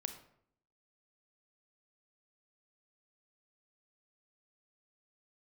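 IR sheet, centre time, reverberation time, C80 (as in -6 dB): 12 ms, 0.65 s, 12.5 dB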